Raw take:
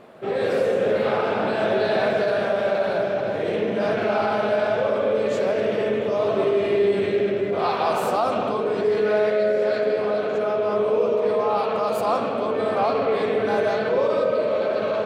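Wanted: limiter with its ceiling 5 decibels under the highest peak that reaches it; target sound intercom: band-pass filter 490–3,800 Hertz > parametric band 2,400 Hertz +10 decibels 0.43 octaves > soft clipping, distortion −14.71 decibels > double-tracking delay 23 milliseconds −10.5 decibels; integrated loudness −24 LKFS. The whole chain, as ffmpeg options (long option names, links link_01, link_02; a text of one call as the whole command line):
ffmpeg -i in.wav -filter_complex "[0:a]alimiter=limit=-15.5dB:level=0:latency=1,highpass=490,lowpass=3800,equalizer=frequency=2400:width_type=o:width=0.43:gain=10,asoftclip=threshold=-23dB,asplit=2[link_01][link_02];[link_02]adelay=23,volume=-10.5dB[link_03];[link_01][link_03]amix=inputs=2:normalize=0,volume=4dB" out.wav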